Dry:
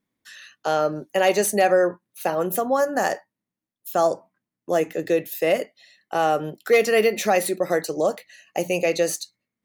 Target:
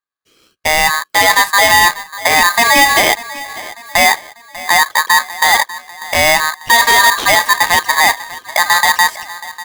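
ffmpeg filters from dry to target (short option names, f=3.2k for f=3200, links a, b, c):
-filter_complex "[0:a]asettb=1/sr,asplit=3[a][b][c];[a]atrim=end=2.294[d];[b]atrim=start=2.29:end=3.03,asetpts=PTS-STARTPTS,afade=t=in:d=0.004:c=qsin,afade=t=out:st=0.736:d=0.004:c=qsin,aeval=exprs='val(0)+0.5*0.0251*sgn(val(0))':c=same[e];[c]atrim=start=3.026[f];[d][e]acrossfade=d=0.004:c1=hsin:c2=qsin[g];[g][f]acrossfade=d=0.004:c1=qsin:c2=hsin,acrossover=split=5900[h][i];[h]acontrast=45[j];[j][i]amix=inputs=2:normalize=0,afwtdn=0.0631,alimiter=limit=-11.5dB:level=0:latency=1:release=11,dynaudnorm=f=350:g=3:m=13dB,asplit=2[k][l];[l]adelay=594,lowpass=f=1.7k:p=1,volume=-16.5dB,asplit=2[m][n];[n]adelay=594,lowpass=f=1.7k:p=1,volume=0.49,asplit=2[o][p];[p]adelay=594,lowpass=f=1.7k:p=1,volume=0.49,asplit=2[q][r];[r]adelay=594,lowpass=f=1.7k:p=1,volume=0.49[s];[m][o][q][s]amix=inputs=4:normalize=0[t];[k][t]amix=inputs=2:normalize=0,aeval=exprs='val(0)*sgn(sin(2*PI*1400*n/s))':c=same,volume=-1dB"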